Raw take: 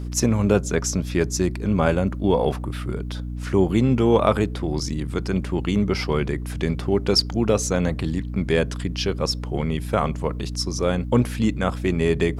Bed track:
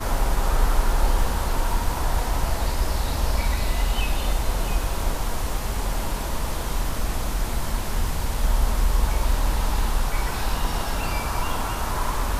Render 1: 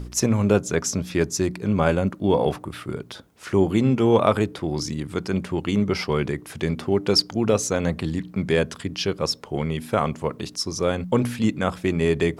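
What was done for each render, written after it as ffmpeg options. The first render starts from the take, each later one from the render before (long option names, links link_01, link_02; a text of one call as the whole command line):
ffmpeg -i in.wav -af "bandreject=frequency=60:width_type=h:width=4,bandreject=frequency=120:width_type=h:width=4,bandreject=frequency=180:width_type=h:width=4,bandreject=frequency=240:width_type=h:width=4,bandreject=frequency=300:width_type=h:width=4" out.wav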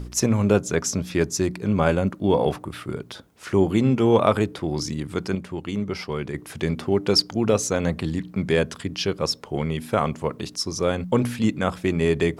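ffmpeg -i in.wav -filter_complex "[0:a]asplit=3[link_01][link_02][link_03];[link_01]atrim=end=5.352[link_04];[link_02]atrim=start=5.348:end=6.342,asetpts=PTS-STARTPTS,volume=-5.5dB[link_05];[link_03]atrim=start=6.338[link_06];[link_04][link_05]acrossfade=duration=0.004:curve1=hsin:curve2=hsin[link_07];[link_07][link_06]acrossfade=duration=0.004:curve1=hsin:curve2=hsin" out.wav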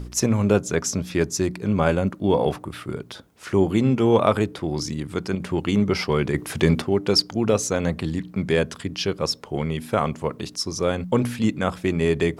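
ffmpeg -i in.wav -filter_complex "[0:a]asettb=1/sr,asplit=3[link_01][link_02][link_03];[link_01]atrim=end=5.404[link_04];[link_02]atrim=start=5.4:end=6.82,asetpts=PTS-STARTPTS,afade=type=in:duration=0.004:curve=qsin,afade=type=out:start_time=1.416:duration=0.004:curve=qsin,acontrast=84[link_05];[link_03]atrim=start=6.816[link_06];[link_04][link_05]acrossfade=duration=0.004:curve1=hsin:curve2=qsin[link_07];[link_07][link_06]acrossfade=duration=0.004:curve1=qsin:curve2=hsin" out.wav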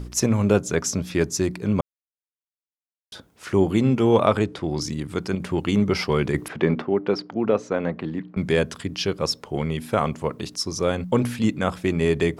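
ffmpeg -i in.wav -filter_complex "[0:a]asettb=1/sr,asplit=3[link_01][link_02][link_03];[link_01]atrim=end=4.254[link_04];[link_02]atrim=start=4.25:end=4.81,asetpts=PTS-STARTPTS,afade=type=in:duration=0.004:curve=qsin,afade=type=out:start_time=0.556:duration=0.004:curve=qsin,lowpass=8300[link_05];[link_03]atrim=start=4.806[link_06];[link_04][link_05]acrossfade=duration=0.004:curve1=hsin:curve2=qsin[link_07];[link_07][link_06]acrossfade=duration=0.004:curve1=qsin:curve2=hsin,asettb=1/sr,asplit=3[link_08][link_09][link_10];[link_08]atrim=end=6.484[link_11];[link_09]atrim=start=6.48:end=8.37,asetpts=PTS-STARTPTS,afade=type=in:duration=0.004:curve=qsin,afade=type=out:start_time=1.886:duration=0.004:curve=qsin,highpass=190,lowpass=2100[link_12];[link_10]atrim=start=8.366[link_13];[link_11][link_12]acrossfade=duration=0.004:curve1=hsin:curve2=qsin[link_14];[link_14][link_13]acrossfade=duration=0.004:curve1=qsin:curve2=hsin,asplit=3[link_15][link_16][link_17];[link_15]atrim=end=1.81,asetpts=PTS-STARTPTS,afade=type=out:start_time=1.806:duration=0.004:curve=hsin[link_18];[link_16]atrim=start=1.81:end=3.12,asetpts=PTS-STARTPTS,volume=0[link_19];[link_17]atrim=start=3.12,asetpts=PTS-STARTPTS,afade=type=in:duration=0.004:curve=hsin[link_20];[link_18][link_19][link_20]concat=n=3:v=0:a=1" out.wav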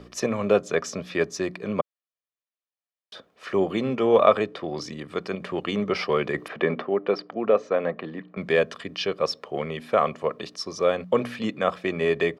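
ffmpeg -i in.wav -filter_complex "[0:a]acrossover=split=210 4500:gain=0.0794 1 0.141[link_01][link_02][link_03];[link_01][link_02][link_03]amix=inputs=3:normalize=0,aecho=1:1:1.7:0.47" out.wav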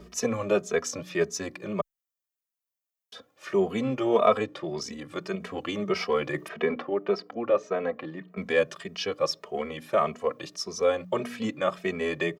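ffmpeg -i in.wav -filter_complex "[0:a]aexciter=amount=1.6:drive=7.5:freq=5800,asplit=2[link_01][link_02];[link_02]adelay=2.8,afreqshift=1.7[link_03];[link_01][link_03]amix=inputs=2:normalize=1" out.wav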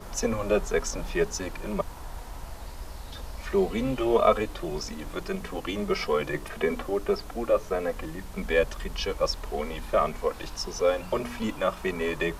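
ffmpeg -i in.wav -i bed.wav -filter_complex "[1:a]volume=-16dB[link_01];[0:a][link_01]amix=inputs=2:normalize=0" out.wav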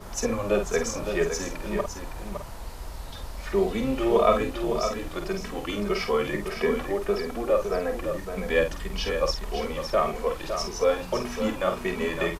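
ffmpeg -i in.wav -filter_complex "[0:a]asplit=2[link_01][link_02];[link_02]adelay=49,volume=-7dB[link_03];[link_01][link_03]amix=inputs=2:normalize=0,aecho=1:1:560:0.422" out.wav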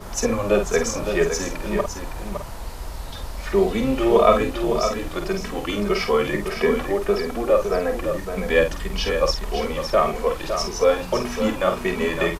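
ffmpeg -i in.wav -af "volume=5dB" out.wav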